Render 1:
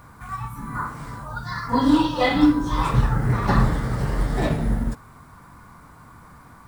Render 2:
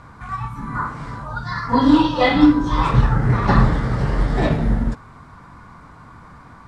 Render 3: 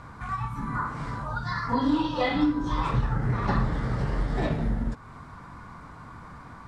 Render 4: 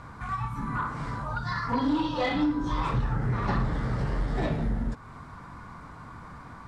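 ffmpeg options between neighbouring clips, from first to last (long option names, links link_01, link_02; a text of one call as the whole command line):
ffmpeg -i in.wav -af "lowpass=5200,volume=4dB" out.wav
ffmpeg -i in.wav -af "acompressor=threshold=-27dB:ratio=2,volume=-1.5dB" out.wav
ffmpeg -i in.wav -af "asoftclip=type=tanh:threshold=-18.5dB" out.wav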